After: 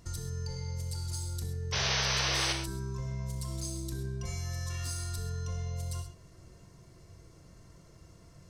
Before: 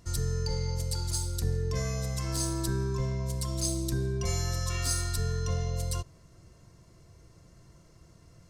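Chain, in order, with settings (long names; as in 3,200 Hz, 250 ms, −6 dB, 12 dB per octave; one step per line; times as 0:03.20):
downward compressor 4 to 1, threshold −37 dBFS, peak gain reduction 11.5 dB
sound drawn into the spectrogram noise, 0:01.72–0:02.53, 370–6,300 Hz −32 dBFS
on a send: convolution reverb, pre-delay 22 ms, DRR 4 dB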